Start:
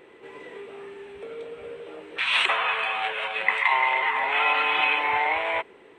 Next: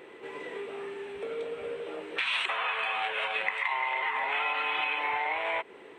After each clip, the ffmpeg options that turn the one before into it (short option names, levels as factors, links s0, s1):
-af "lowshelf=f=94:g=-11,acompressor=threshold=0.0316:ratio=6,volume=1.33"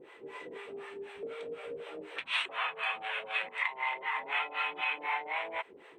-filter_complex "[0:a]acrossover=split=550[s0][s1];[s0]aeval=exprs='val(0)*(1-1/2+1/2*cos(2*PI*4*n/s))':c=same[s2];[s1]aeval=exprs='val(0)*(1-1/2-1/2*cos(2*PI*4*n/s))':c=same[s3];[s2][s3]amix=inputs=2:normalize=0"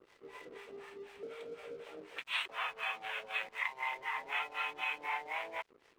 -af "aeval=exprs='sgn(val(0))*max(abs(val(0))-0.00178,0)':c=same,volume=0.668"